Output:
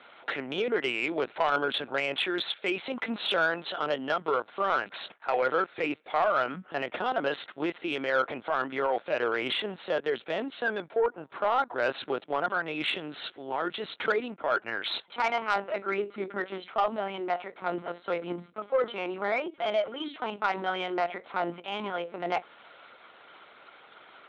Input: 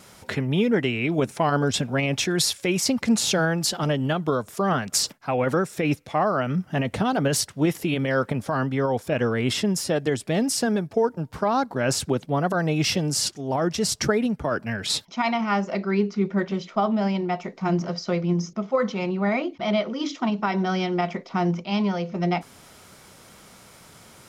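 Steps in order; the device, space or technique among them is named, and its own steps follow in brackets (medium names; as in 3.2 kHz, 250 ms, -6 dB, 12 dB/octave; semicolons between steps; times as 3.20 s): 12.44–14.04 s: dynamic bell 570 Hz, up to -7 dB, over -38 dBFS, Q 1.6; talking toy (LPC vocoder at 8 kHz pitch kept; high-pass 470 Hz 12 dB/octave; peaking EQ 1.4 kHz +6 dB 0.2 oct; saturation -16.5 dBFS, distortion -17 dB)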